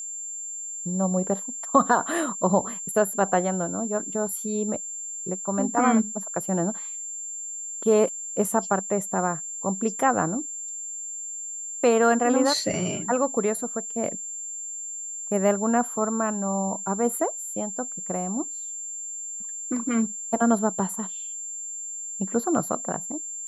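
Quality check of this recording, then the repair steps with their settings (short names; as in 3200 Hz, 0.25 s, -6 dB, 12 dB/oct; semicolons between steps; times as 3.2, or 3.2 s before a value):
tone 7300 Hz -32 dBFS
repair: notch 7300 Hz, Q 30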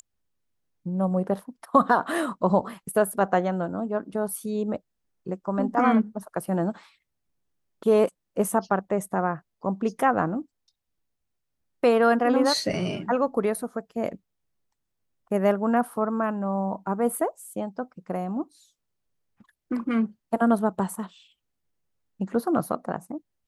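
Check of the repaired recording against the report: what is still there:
none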